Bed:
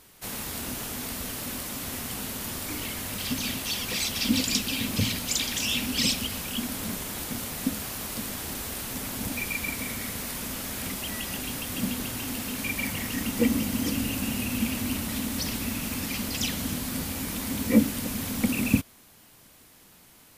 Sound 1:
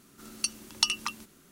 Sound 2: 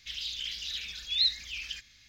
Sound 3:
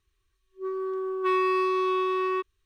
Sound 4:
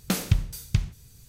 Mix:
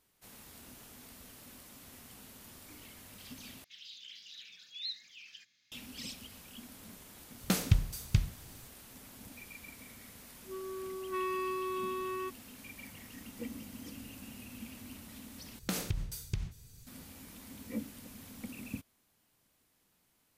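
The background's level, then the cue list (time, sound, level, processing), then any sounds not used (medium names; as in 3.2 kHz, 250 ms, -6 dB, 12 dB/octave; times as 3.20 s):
bed -19 dB
3.64 s: replace with 2 -14 dB + high-pass 140 Hz 24 dB/octave
7.40 s: add 4 -4 dB
9.88 s: add 3 -11 dB
15.59 s: replace with 4 -4 dB + compression 4:1, threshold -25 dBFS
not used: 1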